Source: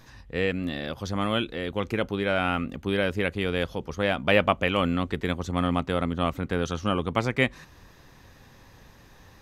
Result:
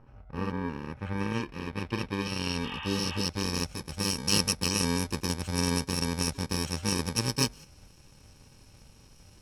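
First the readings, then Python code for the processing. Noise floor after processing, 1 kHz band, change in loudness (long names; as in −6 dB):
−56 dBFS, −7.5 dB, −3.0 dB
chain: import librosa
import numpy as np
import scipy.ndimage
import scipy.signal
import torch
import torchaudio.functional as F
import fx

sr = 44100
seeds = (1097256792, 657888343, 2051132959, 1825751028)

y = fx.bit_reversed(x, sr, seeds[0], block=64)
y = fx.filter_sweep_lowpass(y, sr, from_hz=1200.0, to_hz=6700.0, start_s=0.05, end_s=3.86, q=1.2)
y = fx.spec_repair(y, sr, seeds[1], start_s=2.67, length_s=0.54, low_hz=710.0, high_hz=3700.0, source='after')
y = F.gain(torch.from_numpy(y), -1.0).numpy()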